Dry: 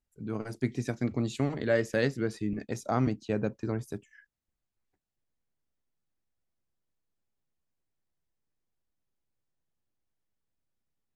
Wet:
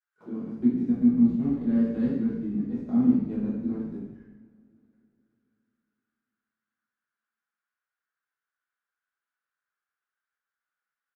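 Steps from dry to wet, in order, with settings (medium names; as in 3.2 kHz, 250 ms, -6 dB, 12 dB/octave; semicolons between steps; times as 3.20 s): formants flattened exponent 0.6; in parallel at -6 dB: word length cut 6-bit, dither none; on the sum: auto-wah 240–1500 Hz, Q 5.9, down, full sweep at -29 dBFS; frequency-shifting echo 90 ms, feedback 48%, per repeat -56 Hz, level -17 dB; two-slope reverb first 0.88 s, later 3.3 s, from -22 dB, DRR -8 dB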